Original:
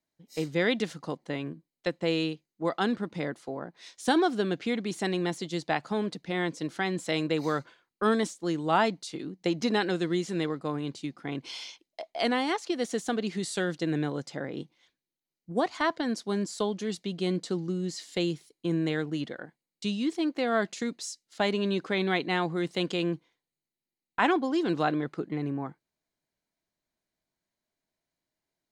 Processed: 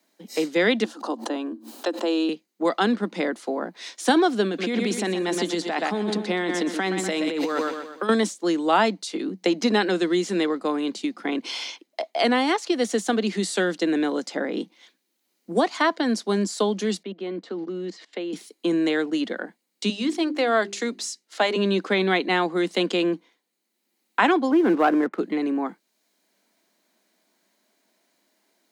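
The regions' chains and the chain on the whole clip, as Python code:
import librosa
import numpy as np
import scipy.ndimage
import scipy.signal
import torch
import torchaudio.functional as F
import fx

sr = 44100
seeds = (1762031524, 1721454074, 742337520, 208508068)

y = fx.chain(x, sr, fx.cheby_ripple_highpass(hz=220.0, ripple_db=6),
    fx.peak_eq(hz=2100.0, db=-14.0, octaves=0.32),
    fx.pre_swell(db_per_s=110.0), at=(0.84, 2.29))
y = fx.chain(y, sr, fx.echo_feedback(ms=123, feedback_pct=39, wet_db=-10.0),
    fx.over_compress(threshold_db=-32.0, ratio=-1.0), at=(4.46, 8.09))
y = fx.chain(y, sr, fx.bandpass_edges(low_hz=250.0, high_hz=2300.0),
    fx.level_steps(step_db=20), at=(17.03, 18.33))
y = fx.chain(y, sr, fx.highpass(hz=300.0, slope=12),
    fx.hum_notches(base_hz=50, count=8), at=(19.89, 21.56))
y = fx.chain(y, sr, fx.lowpass(hz=2000.0, slope=24),
    fx.leveller(passes=1), at=(24.51, 25.19))
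y = scipy.signal.sosfilt(scipy.signal.butter(12, 190.0, 'highpass', fs=sr, output='sos'), y)
y = fx.band_squash(y, sr, depth_pct=40)
y = y * librosa.db_to_amplitude(7.0)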